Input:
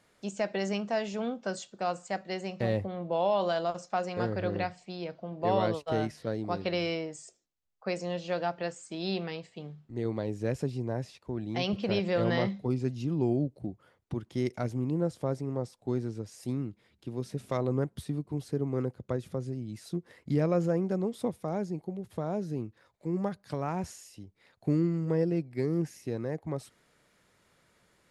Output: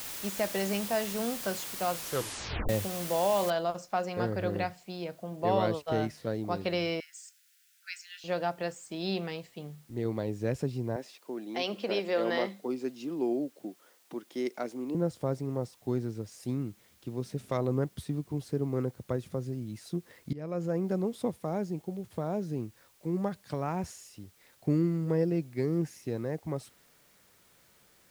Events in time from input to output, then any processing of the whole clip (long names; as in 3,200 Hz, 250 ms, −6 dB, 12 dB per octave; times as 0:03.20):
0:01.94: tape stop 0.75 s
0:03.50: noise floor change −40 dB −65 dB
0:07.00–0:08.24: Chebyshev high-pass filter 1,400 Hz, order 8
0:10.96–0:14.95: high-pass filter 260 Hz 24 dB per octave
0:20.33–0:20.90: fade in, from −21 dB